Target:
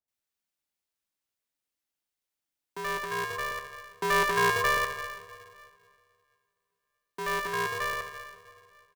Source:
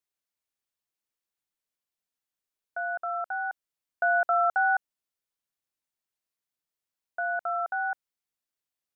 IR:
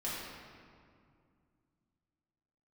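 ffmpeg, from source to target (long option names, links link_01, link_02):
-filter_complex "[0:a]acrossover=split=850[link_01][link_02];[link_02]adelay=80[link_03];[link_01][link_03]amix=inputs=2:normalize=0,asplit=2[link_04][link_05];[1:a]atrim=start_sample=2205[link_06];[link_05][link_06]afir=irnorm=-1:irlink=0,volume=-7.5dB[link_07];[link_04][link_07]amix=inputs=2:normalize=0,aeval=exprs='val(0)*sgn(sin(2*PI*290*n/s))':channel_layout=same,volume=-1dB"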